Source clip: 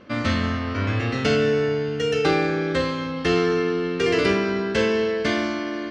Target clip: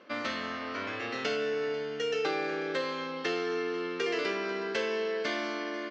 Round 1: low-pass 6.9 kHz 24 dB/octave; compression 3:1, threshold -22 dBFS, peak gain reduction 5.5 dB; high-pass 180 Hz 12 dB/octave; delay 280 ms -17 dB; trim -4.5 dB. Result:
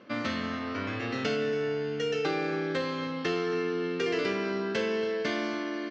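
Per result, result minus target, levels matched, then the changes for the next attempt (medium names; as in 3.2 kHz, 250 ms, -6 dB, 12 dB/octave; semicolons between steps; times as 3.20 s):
echo 212 ms early; 250 Hz band +4.0 dB
change: delay 492 ms -17 dB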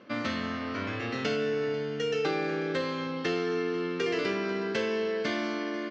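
250 Hz band +4.0 dB
change: high-pass 380 Hz 12 dB/octave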